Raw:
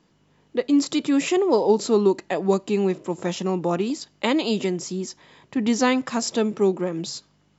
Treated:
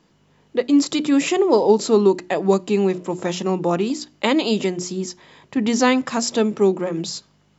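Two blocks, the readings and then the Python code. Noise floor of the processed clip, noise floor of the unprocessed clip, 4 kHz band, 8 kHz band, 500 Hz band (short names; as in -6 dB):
-59 dBFS, -63 dBFS, +3.5 dB, n/a, +3.5 dB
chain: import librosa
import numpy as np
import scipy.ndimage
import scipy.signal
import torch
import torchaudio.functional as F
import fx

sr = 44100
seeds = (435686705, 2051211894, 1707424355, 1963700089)

y = fx.hum_notches(x, sr, base_hz=60, count=6)
y = y * librosa.db_to_amplitude(3.5)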